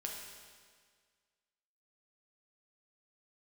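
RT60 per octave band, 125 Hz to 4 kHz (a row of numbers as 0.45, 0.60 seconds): 1.7, 1.8, 1.8, 1.7, 1.7, 1.7 seconds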